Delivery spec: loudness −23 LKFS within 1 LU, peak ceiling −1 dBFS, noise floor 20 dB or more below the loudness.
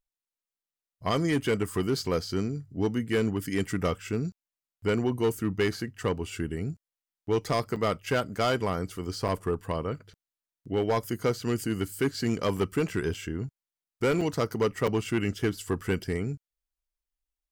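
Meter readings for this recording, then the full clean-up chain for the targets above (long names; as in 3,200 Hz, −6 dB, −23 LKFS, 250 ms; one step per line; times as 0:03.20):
share of clipped samples 1.6%; peaks flattened at −19.5 dBFS; number of dropouts 6; longest dropout 5.1 ms; integrated loudness −29.5 LKFS; sample peak −19.5 dBFS; target loudness −23.0 LKFS
→ clipped peaks rebuilt −19.5 dBFS
repair the gap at 0:07.76/0:09.28/0:12.57/0:13.14/0:14.21/0:14.87, 5.1 ms
level +6.5 dB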